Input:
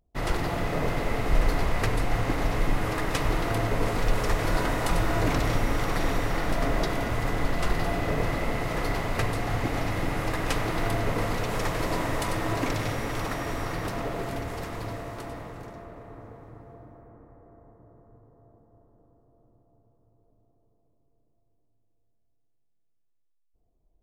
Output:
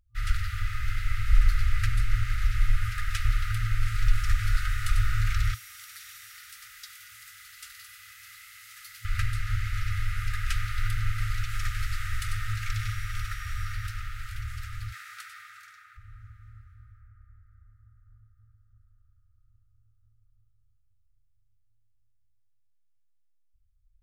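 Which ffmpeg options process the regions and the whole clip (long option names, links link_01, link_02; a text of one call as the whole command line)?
ffmpeg -i in.wav -filter_complex "[0:a]asettb=1/sr,asplit=3[link_01][link_02][link_03];[link_01]atrim=end=5.544[link_04];[link_02]atrim=start=5.54:end=9.05,asetpts=PTS-STARTPTS,afade=type=in:duration=0.004:curve=qsin,afade=type=out:start_time=3.506:duration=0.004:curve=qsin,highpass=40,aderivative[link_05];[link_03]atrim=start=9.046[link_06];[link_04][link_05]acrossfade=duration=0.004:curve1=hsin:curve2=qsin[link_07];[link_07][link_06]acrossfade=duration=0.004:curve1=qsin:curve2=hsin,asettb=1/sr,asplit=3[link_08][link_09][link_10];[link_08]atrim=end=14.924[link_11];[link_09]atrim=start=14.92:end=15.97,asetpts=PTS-STARTPTS,afade=type=in:duration=0.004:curve=qsin,afade=type=out:start_time=1.046:duration=0.004:curve=qsin,highpass=910,bandreject=frequency=2900:width=22,acontrast=48[link_12];[link_10]atrim=start=15.966[link_13];[link_11][link_12]acrossfade=duration=0.004:curve1=hsin:curve2=qsin[link_14];[link_14][link_13]acrossfade=duration=0.004:curve1=qsin:curve2=hsin,tiltshelf=frequency=640:gain=3.5,afftfilt=real='re*(1-between(b*sr/4096,110,1200))':imag='im*(1-between(b*sr/4096,110,1200))':win_size=4096:overlap=0.75" out.wav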